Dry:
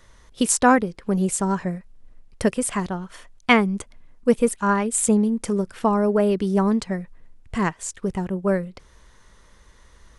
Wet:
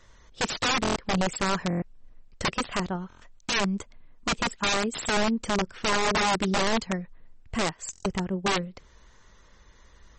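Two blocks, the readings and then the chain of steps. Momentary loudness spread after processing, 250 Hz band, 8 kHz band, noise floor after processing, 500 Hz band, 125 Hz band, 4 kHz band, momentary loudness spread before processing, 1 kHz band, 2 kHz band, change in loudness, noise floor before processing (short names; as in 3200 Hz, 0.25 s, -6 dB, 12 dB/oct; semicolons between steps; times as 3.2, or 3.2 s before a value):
10 LU, -8.5 dB, -7.0 dB, -56 dBFS, -7.5 dB, -5.0 dB, +6.5 dB, 12 LU, -3.5 dB, -1.0 dB, -5.0 dB, -53 dBFS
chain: wrapped overs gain 16 dB; stuck buffer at 0.82/1.68/3.08/7.91, samples 1024, times 5; gain -2.5 dB; MP3 32 kbps 48000 Hz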